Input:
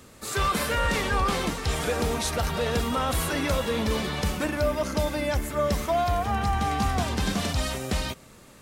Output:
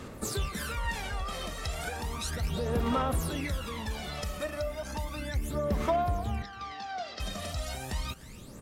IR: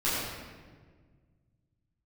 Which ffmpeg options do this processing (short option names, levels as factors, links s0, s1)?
-filter_complex "[0:a]acompressor=threshold=0.0224:ratio=6,aphaser=in_gain=1:out_gain=1:delay=1.6:decay=0.7:speed=0.34:type=sinusoidal,asettb=1/sr,asplit=3[s0][s1][s2];[s0]atrim=end=6.424[s3];[s1]atrim=start=6.42:end=7.2,asetpts=PTS-STARTPTS,afade=t=in:d=0.004:c=qsin,afade=t=out:st=0.776:d=0.004:c=qsin,highpass=390,equalizer=f=950:t=q:w=4:g=-10,equalizer=f=2500:t=q:w=4:g=-3,equalizer=f=4800:t=q:w=4:g=5,lowpass=f=5200:w=0.5412,lowpass=f=5200:w=1.3066[s4];[s2]atrim=start=7.196[s5];[s3][s4]acrossfade=d=0.004:c1=hsin:c2=qsin[s6];[s6][s5]acrossfade=d=0.004:c1=qsin:c2=hsin,asplit=2[s7][s8];[s8]aecho=0:1:300:0.0944[s9];[s7][s9]amix=inputs=2:normalize=0,volume=0.794"